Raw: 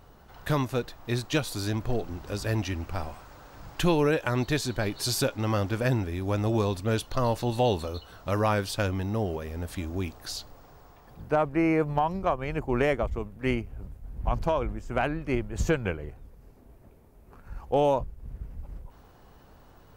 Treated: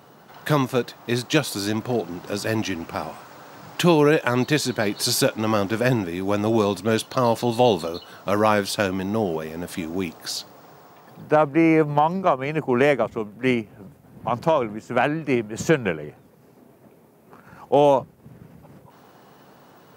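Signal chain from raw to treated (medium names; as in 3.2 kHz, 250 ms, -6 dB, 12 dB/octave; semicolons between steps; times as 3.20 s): high-pass 140 Hz 24 dB/octave; trim +7 dB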